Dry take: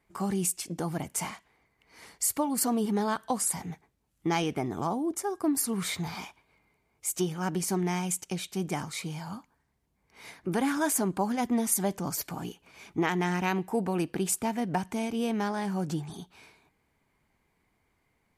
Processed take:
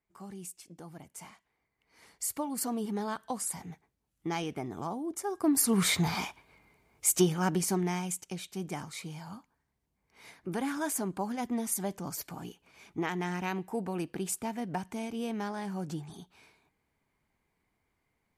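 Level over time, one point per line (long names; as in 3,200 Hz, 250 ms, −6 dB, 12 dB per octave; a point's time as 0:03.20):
0:01.14 −15 dB
0:02.30 −6 dB
0:05.06 −6 dB
0:05.79 +5.5 dB
0:07.13 +5.5 dB
0:08.22 −5.5 dB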